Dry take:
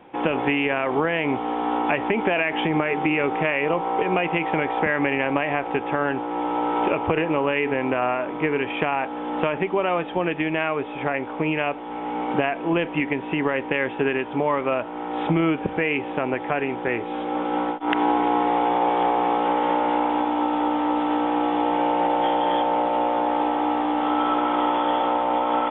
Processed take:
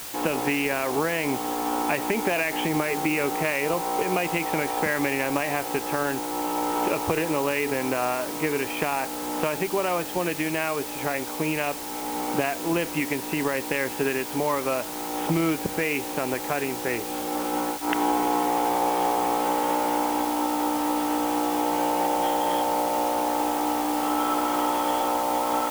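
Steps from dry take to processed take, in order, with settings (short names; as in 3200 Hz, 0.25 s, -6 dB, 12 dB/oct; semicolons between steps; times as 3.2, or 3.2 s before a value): added noise white -34 dBFS; gain -3 dB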